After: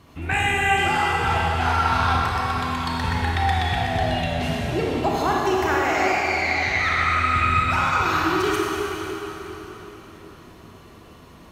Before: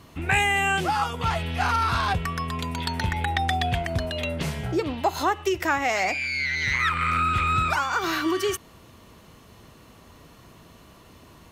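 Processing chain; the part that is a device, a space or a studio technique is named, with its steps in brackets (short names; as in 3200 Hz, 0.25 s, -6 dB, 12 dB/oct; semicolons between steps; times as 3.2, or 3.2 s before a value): swimming-pool hall (reverb RT60 4.3 s, pre-delay 27 ms, DRR -4.5 dB; high shelf 5200 Hz -5 dB); gain -2 dB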